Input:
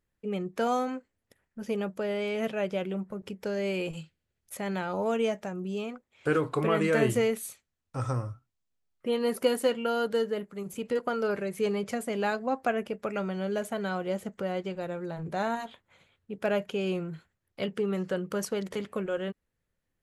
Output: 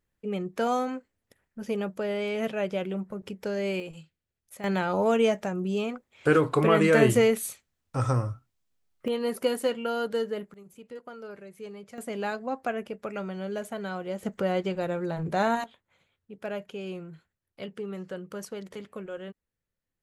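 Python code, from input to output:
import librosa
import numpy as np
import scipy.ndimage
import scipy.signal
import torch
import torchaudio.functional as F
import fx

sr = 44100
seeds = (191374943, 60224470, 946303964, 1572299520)

y = fx.gain(x, sr, db=fx.steps((0.0, 1.0), (3.8, -6.0), (4.64, 5.0), (9.08, -1.0), (10.54, -13.0), (11.98, -2.5), (14.23, 5.0), (15.64, -6.5)))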